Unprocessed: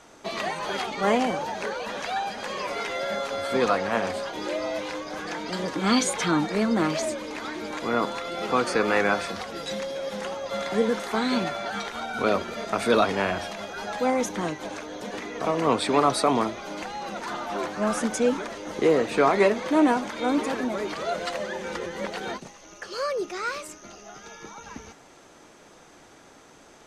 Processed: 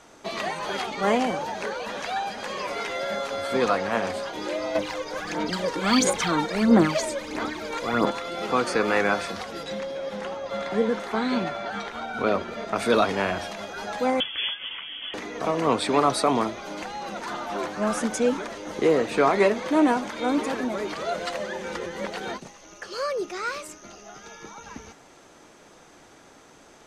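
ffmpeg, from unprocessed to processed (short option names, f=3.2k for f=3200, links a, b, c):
-filter_complex "[0:a]asettb=1/sr,asplit=3[a][b][c];[a]atrim=end=4.754[d];[b]atrim=start=4.75:end=8.11,asetpts=PTS-STARTPTS,afade=t=in:d=0.004:c=qsin,afade=t=out:st=3.356:d=0.004:c=qsin,aphaser=in_gain=1:out_gain=1:delay=2.2:decay=0.61:speed=1.5:type=sinusoidal[e];[c]atrim=start=8.106[f];[d][e]acrossfade=d=0.004:c1=hsin:c2=qsin[g];[g][f]acrossfade=d=0.004:c1=qsin:c2=hsin,asettb=1/sr,asplit=3[h][i][j];[h]atrim=end=9.634[k];[i]atrim=start=9.63:end=12.76,asetpts=PTS-STARTPTS,afade=t=in:d=0.004:c=qsin,afade=t=out:st=3.126:d=0.004:c=qsin,highshelf=f=5.3k:g=-11.5[l];[j]atrim=start=12.756[m];[k][l]acrossfade=d=0.004:c1=hsin:c2=qsin[n];[n][m]acrossfade=d=0.004:c1=qsin:c2=hsin,asettb=1/sr,asplit=3[o][p][q];[o]atrim=end=14.204[r];[p]atrim=start=14.2:end=15.14,asetpts=PTS-STARTPTS,afade=t=in:d=0.004:c=qsin,afade=t=out:st=0.936:d=0.004:c=qsin,lowpass=f=3.1k:t=q:w=0.5098,lowpass=f=3.1k:t=q:w=0.6013,lowpass=f=3.1k:t=q:w=0.9,lowpass=f=3.1k:t=q:w=2.563,afreqshift=-3600[s];[q]atrim=start=15.136[t];[r][s]acrossfade=d=0.004:c1=hsin:c2=qsin[u];[u][t]acrossfade=d=0.004:c1=qsin:c2=hsin"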